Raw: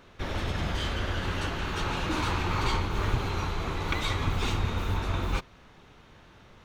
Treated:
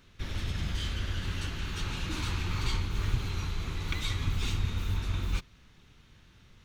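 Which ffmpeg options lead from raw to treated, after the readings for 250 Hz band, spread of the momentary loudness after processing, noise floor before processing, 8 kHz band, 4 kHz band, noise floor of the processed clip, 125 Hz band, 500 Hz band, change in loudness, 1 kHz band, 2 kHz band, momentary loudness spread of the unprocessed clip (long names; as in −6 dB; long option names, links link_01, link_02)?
−6.0 dB, 4 LU, −55 dBFS, −1.0 dB, −2.5 dB, −59 dBFS, −1.5 dB, −11.5 dB, −3.5 dB, −11.5 dB, −6.0 dB, 4 LU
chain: -af "equalizer=frequency=690:width=0.5:gain=-14.5"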